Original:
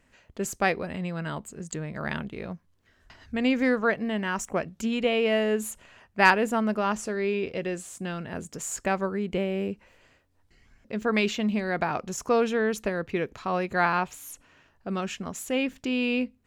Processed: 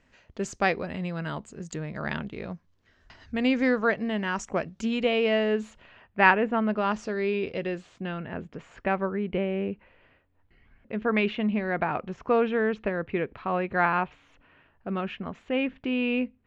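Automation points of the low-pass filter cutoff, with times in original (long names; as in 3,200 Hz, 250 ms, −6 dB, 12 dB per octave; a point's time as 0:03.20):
low-pass filter 24 dB per octave
0:05.15 6,400 Hz
0:06.47 2,700 Hz
0:06.97 5,100 Hz
0:07.58 5,100 Hz
0:08.23 3,000 Hz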